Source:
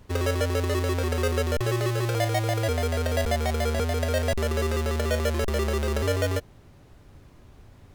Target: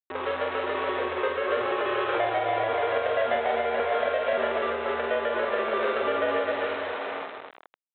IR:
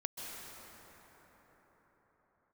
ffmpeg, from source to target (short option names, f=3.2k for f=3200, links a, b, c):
-filter_complex "[0:a]asplit=2[a][b];[1:a]atrim=start_sample=2205,asetrate=57330,aresample=44100,adelay=127[c];[b][c]afir=irnorm=-1:irlink=0,volume=-5dB[d];[a][d]amix=inputs=2:normalize=0,dynaudnorm=f=380:g=5:m=7dB,aresample=8000,acrusher=bits=4:mix=0:aa=0.000001,aresample=44100,aecho=1:1:46.65|151.6|256.6:0.708|0.282|0.447,alimiter=limit=-11dB:level=0:latency=1:release=271,highpass=730,lowpass=2.8k,tiltshelf=f=1.2k:g=5.5"